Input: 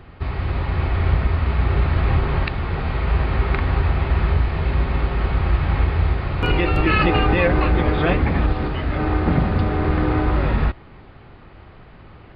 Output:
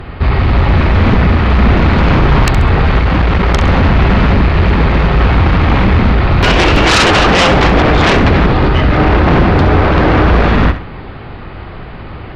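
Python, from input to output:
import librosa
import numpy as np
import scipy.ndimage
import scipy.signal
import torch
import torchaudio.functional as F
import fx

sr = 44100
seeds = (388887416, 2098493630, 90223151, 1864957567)

y = fx.highpass(x, sr, hz=48.0, slope=24, at=(5.2, 5.88))
y = fx.fold_sine(y, sr, drive_db=12, ceiling_db=-5.5)
y = fx.echo_feedback(y, sr, ms=67, feedback_pct=29, wet_db=-11.0)
y = fx.transformer_sat(y, sr, knee_hz=62.0, at=(2.99, 3.63))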